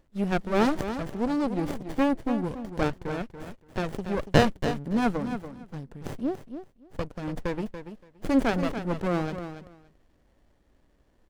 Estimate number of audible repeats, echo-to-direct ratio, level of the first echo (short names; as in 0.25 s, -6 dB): 2, -10.0 dB, -10.0 dB